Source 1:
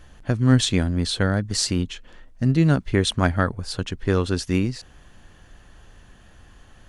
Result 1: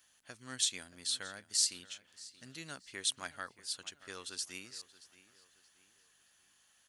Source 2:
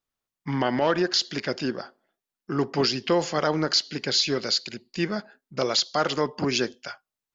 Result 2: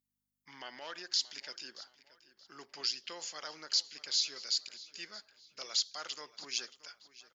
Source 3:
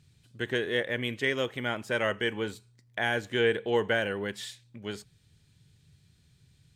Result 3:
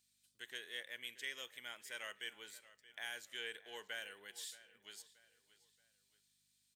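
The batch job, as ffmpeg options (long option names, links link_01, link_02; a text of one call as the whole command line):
ffmpeg -i in.wav -filter_complex "[0:a]aeval=exprs='val(0)+0.00316*(sin(2*PI*50*n/s)+sin(2*PI*2*50*n/s)/2+sin(2*PI*3*50*n/s)/3+sin(2*PI*4*50*n/s)/4+sin(2*PI*5*50*n/s)/5)':channel_layout=same,aderivative,asplit=2[link_01][link_02];[link_02]adelay=627,lowpass=frequency=5000:poles=1,volume=-17dB,asplit=2[link_03][link_04];[link_04]adelay=627,lowpass=frequency=5000:poles=1,volume=0.4,asplit=2[link_05][link_06];[link_06]adelay=627,lowpass=frequency=5000:poles=1,volume=0.4[link_07];[link_01][link_03][link_05][link_07]amix=inputs=4:normalize=0,volume=-4dB" out.wav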